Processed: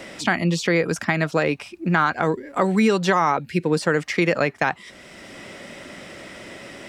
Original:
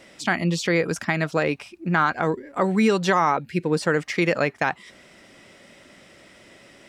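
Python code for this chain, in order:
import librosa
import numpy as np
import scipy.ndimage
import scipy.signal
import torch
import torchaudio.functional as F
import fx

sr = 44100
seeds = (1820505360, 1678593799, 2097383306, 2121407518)

y = fx.band_squash(x, sr, depth_pct=40)
y = y * 10.0 ** (1.5 / 20.0)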